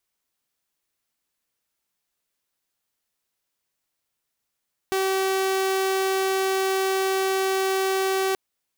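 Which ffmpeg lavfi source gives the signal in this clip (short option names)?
-f lavfi -i "aevalsrc='0.119*(2*mod(383*t,1)-1)':d=3.43:s=44100"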